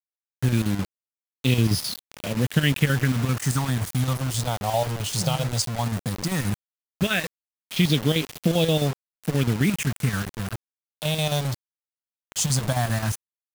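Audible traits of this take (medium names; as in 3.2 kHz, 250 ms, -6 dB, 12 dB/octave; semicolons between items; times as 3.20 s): phasing stages 4, 0.15 Hz, lowest notch 280–1400 Hz; chopped level 7.6 Hz, depth 60%, duty 70%; a quantiser's noise floor 6-bit, dither none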